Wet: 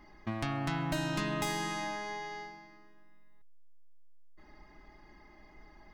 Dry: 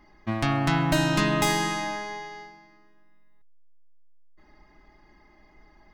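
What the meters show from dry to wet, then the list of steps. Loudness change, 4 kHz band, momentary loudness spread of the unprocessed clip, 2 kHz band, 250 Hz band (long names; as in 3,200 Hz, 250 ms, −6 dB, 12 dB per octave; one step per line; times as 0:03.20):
−10.0 dB, −10.0 dB, 15 LU, −9.5 dB, −10.0 dB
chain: downward compressor 2 to 1, threshold −39 dBFS, peak gain reduction 11.5 dB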